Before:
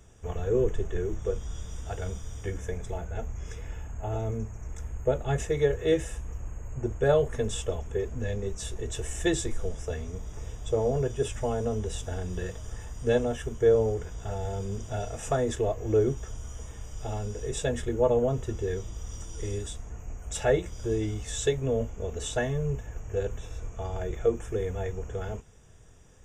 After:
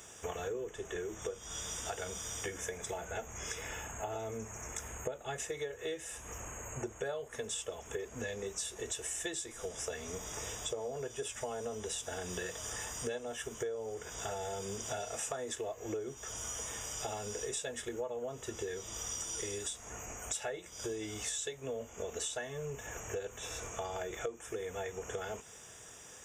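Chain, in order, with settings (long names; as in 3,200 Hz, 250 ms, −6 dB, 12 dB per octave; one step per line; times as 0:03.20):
high-pass filter 840 Hz 6 dB per octave
high-shelf EQ 5,800 Hz +5.5 dB
downward compressor 12 to 1, threshold −46 dBFS, peak gain reduction 23 dB
level +10 dB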